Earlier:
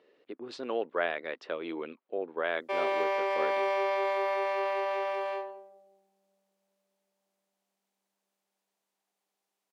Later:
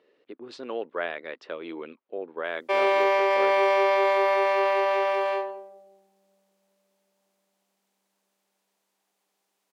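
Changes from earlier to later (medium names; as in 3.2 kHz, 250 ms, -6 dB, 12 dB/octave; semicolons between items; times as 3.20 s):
background +8.0 dB; master: add peaking EQ 720 Hz -2 dB 0.3 oct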